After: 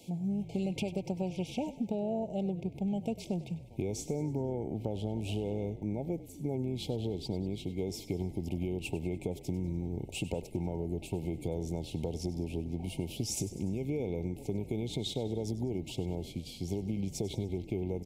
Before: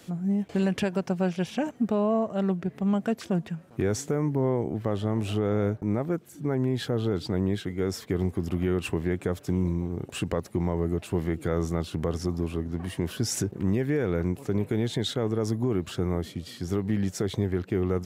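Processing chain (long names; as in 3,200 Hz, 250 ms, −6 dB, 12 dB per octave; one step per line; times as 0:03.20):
brick-wall band-stop 940–2,100 Hz
downward compressor 10 to 1, threshold −26 dBFS, peak gain reduction 7 dB
echo with shifted repeats 98 ms, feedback 53%, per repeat −42 Hz, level −15 dB
level −3.5 dB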